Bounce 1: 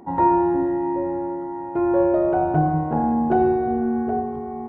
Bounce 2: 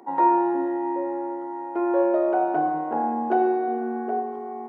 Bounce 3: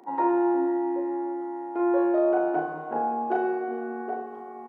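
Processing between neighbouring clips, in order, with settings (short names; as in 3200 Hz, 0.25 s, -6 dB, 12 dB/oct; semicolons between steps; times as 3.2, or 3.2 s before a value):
Bessel high-pass 390 Hz, order 8
doubler 37 ms -3 dB; gain -3.5 dB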